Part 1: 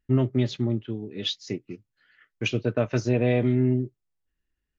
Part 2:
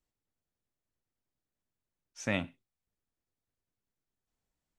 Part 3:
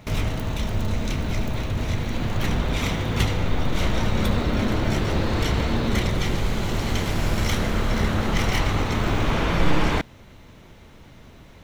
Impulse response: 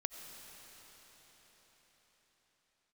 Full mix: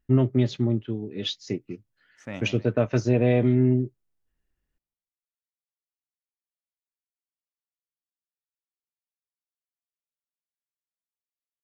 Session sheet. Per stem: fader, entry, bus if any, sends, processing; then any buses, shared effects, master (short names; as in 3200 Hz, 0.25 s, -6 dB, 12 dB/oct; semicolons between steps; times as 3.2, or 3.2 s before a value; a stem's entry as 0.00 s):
+2.0 dB, 0.00 s, no send, no echo send, high shelf 4600 Hz +8.5 dB
-3.5 dB, 0.00 s, no send, echo send -7.5 dB, Wiener smoothing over 9 samples
off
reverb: off
echo: feedback echo 0.154 s, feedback 35%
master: high shelf 2300 Hz -9.5 dB